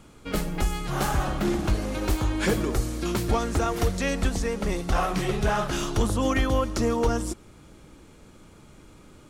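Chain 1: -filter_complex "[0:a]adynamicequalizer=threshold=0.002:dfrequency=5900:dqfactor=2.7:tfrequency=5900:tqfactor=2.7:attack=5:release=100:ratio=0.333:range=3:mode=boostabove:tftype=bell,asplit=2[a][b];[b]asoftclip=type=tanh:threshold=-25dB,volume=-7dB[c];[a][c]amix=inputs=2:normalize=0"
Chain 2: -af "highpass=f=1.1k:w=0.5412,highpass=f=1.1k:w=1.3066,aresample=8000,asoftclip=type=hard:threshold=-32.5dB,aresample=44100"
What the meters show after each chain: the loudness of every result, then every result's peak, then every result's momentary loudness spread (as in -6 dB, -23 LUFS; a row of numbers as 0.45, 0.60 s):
-24.5, -37.5 LUFS; -11.5, -27.5 dBFS; 4, 5 LU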